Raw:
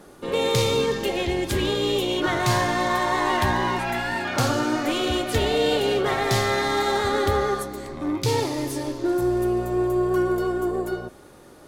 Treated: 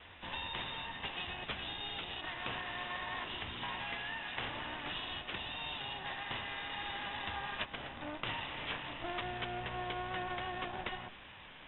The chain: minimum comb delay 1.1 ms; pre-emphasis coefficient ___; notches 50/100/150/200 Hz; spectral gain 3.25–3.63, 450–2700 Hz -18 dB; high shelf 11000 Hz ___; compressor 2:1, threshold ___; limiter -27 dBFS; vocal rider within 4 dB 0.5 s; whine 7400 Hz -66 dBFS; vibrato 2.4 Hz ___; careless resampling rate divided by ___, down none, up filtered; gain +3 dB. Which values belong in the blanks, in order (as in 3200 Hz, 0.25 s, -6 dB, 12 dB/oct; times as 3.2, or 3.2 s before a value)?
0.9, -2 dB, -45 dBFS, 11 cents, 6×